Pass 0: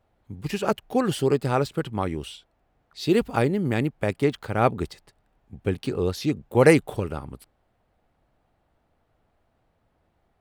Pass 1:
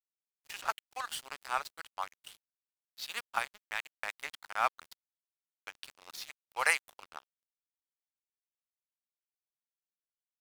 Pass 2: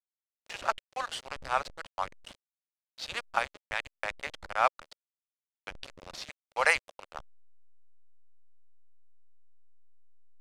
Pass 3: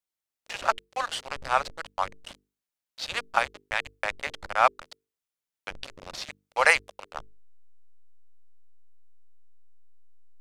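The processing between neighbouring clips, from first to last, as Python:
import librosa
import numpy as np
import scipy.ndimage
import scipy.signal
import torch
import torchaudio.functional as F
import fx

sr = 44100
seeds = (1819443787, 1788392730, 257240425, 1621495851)

y1 = scipy.signal.sosfilt(scipy.signal.cheby2(4, 60, 270.0, 'highpass', fs=sr, output='sos'), x)
y1 = np.sign(y1) * np.maximum(np.abs(y1) - 10.0 ** (-38.0 / 20.0), 0.0)
y1 = y1 * librosa.db_to_amplitude(-1.5)
y2 = fx.delta_hold(y1, sr, step_db=-44.5)
y2 = scipy.signal.sosfilt(scipy.signal.butter(2, 6800.0, 'lowpass', fs=sr, output='sos'), y2)
y2 = fx.peak_eq(y2, sr, hz=560.0, db=8.0, octaves=0.65)
y2 = y2 * librosa.db_to_amplitude(3.0)
y3 = fx.hum_notches(y2, sr, base_hz=50, count=9)
y3 = y3 * librosa.db_to_amplitude(5.0)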